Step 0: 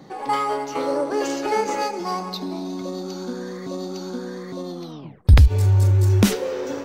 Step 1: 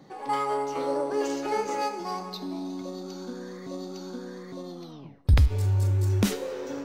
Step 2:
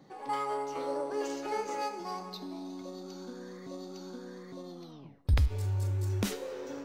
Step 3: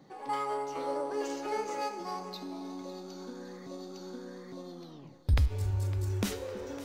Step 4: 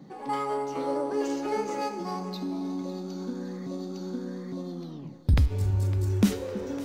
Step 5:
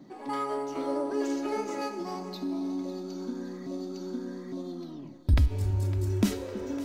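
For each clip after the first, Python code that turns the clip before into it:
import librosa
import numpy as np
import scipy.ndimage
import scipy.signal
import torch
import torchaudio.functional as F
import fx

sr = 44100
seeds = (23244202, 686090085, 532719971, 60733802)

y1 = fx.comb_fb(x, sr, f0_hz=140.0, decay_s=0.81, harmonics='all', damping=0.0, mix_pct=60)
y2 = fx.dynamic_eq(y1, sr, hz=170.0, q=0.88, threshold_db=-38.0, ratio=4.0, max_db=-4)
y2 = y2 * 10.0 ** (-5.5 / 20.0)
y3 = fx.echo_split(y2, sr, split_hz=420.0, low_ms=322, high_ms=557, feedback_pct=52, wet_db=-15.5)
y4 = fx.peak_eq(y3, sr, hz=200.0, db=11.0, octaves=1.4)
y4 = y4 * 10.0 ** (2.0 / 20.0)
y5 = y4 + 0.48 * np.pad(y4, (int(3.1 * sr / 1000.0), 0))[:len(y4)]
y5 = y5 * 10.0 ** (-2.0 / 20.0)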